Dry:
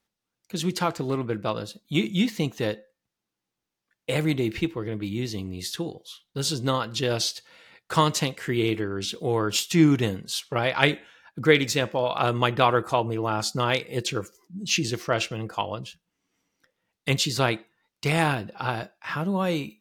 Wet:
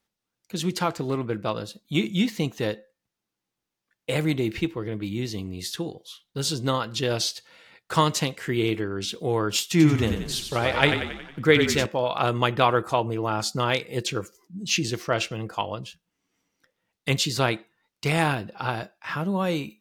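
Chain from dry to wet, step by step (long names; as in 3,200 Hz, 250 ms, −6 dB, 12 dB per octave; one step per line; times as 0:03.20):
0:09.64–0:11.86: echo with shifted repeats 91 ms, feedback 54%, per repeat −31 Hz, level −7 dB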